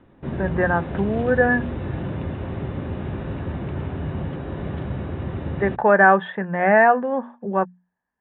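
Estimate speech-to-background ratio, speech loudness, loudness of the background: 10.0 dB, -19.5 LUFS, -29.5 LUFS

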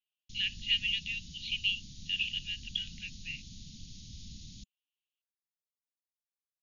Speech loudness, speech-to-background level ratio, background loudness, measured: -33.5 LUFS, 16.0 dB, -49.5 LUFS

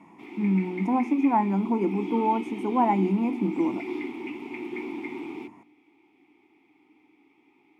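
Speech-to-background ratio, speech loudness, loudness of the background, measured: 11.0 dB, -25.5 LUFS, -36.5 LUFS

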